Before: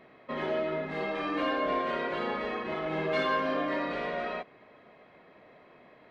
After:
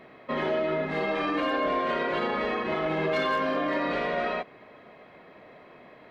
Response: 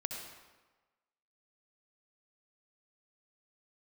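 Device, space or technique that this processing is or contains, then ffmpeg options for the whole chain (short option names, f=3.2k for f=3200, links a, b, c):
clipper into limiter: -af "asoftclip=type=hard:threshold=-20.5dB,alimiter=level_in=0.5dB:limit=-24dB:level=0:latency=1:release=30,volume=-0.5dB,volume=5.5dB"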